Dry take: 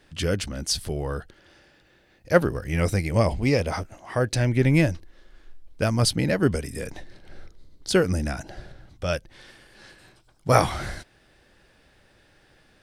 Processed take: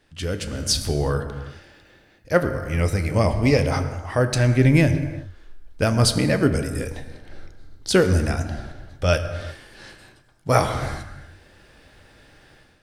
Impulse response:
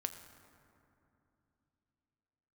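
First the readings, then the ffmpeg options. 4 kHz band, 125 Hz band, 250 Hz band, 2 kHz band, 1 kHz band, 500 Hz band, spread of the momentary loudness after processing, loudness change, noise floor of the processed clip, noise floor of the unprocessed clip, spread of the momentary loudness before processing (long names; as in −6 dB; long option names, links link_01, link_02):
+3.0 dB, +4.0 dB, +3.0 dB, +2.5 dB, +1.5 dB, +2.5 dB, 17 LU, +3.0 dB, −56 dBFS, −60 dBFS, 15 LU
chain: -filter_complex "[1:a]atrim=start_sample=2205,afade=type=out:start_time=0.44:duration=0.01,atrim=end_sample=19845[link_01];[0:a][link_01]afir=irnorm=-1:irlink=0,dynaudnorm=framelen=380:gausssize=3:maxgain=11dB,volume=-3dB"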